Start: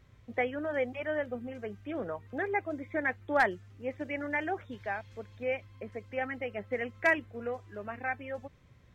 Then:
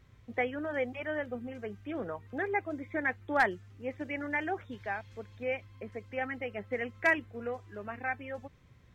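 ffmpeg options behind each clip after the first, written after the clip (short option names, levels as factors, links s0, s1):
-af "equalizer=f=590:t=o:w=0.34:g=-3.5"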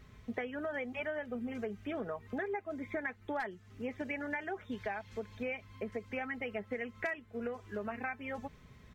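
-af "aecho=1:1:4.7:0.47,acompressor=threshold=0.0112:ratio=10,volume=1.68"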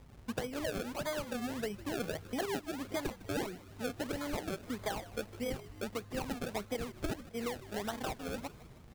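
-filter_complex "[0:a]acrusher=samples=31:mix=1:aa=0.000001:lfo=1:lforange=31:lforate=1.6,asplit=6[s0][s1][s2][s3][s4][s5];[s1]adelay=155,afreqshift=-100,volume=0.15[s6];[s2]adelay=310,afreqshift=-200,volume=0.0851[s7];[s3]adelay=465,afreqshift=-300,volume=0.0484[s8];[s4]adelay=620,afreqshift=-400,volume=0.0279[s9];[s5]adelay=775,afreqshift=-500,volume=0.0158[s10];[s0][s6][s7][s8][s9][s10]amix=inputs=6:normalize=0,volume=1.12"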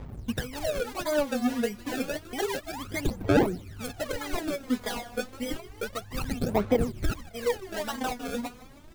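-af "aphaser=in_gain=1:out_gain=1:delay=4.2:decay=0.78:speed=0.3:type=sinusoidal,volume=1.33"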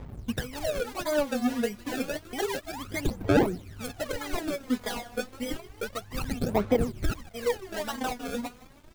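-af "aeval=exprs='sgn(val(0))*max(abs(val(0))-0.00141,0)':c=same"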